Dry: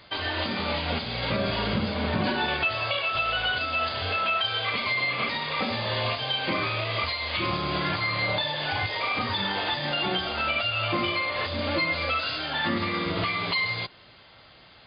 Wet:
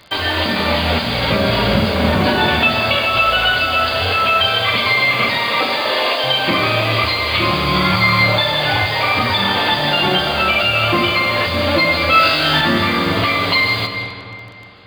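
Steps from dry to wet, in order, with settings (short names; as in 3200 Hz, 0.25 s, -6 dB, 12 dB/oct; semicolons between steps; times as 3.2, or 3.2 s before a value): in parallel at -1 dB: bit-crush 7-bit; 5.38–6.24 on the sum: steep high-pass 270 Hz 72 dB/oct; 7.67–8.23 comb 0.9 ms, depth 47%; 12.1–12.61 flutter echo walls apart 3.4 m, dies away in 0.54 s; digital reverb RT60 2.7 s, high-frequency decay 0.55×, pre-delay 0.105 s, DRR 5.5 dB; gain +5 dB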